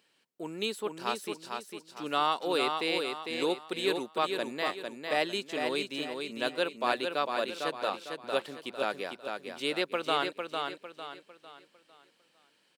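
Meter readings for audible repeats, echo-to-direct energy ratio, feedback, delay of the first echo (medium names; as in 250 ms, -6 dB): 4, -4.5 dB, 37%, 452 ms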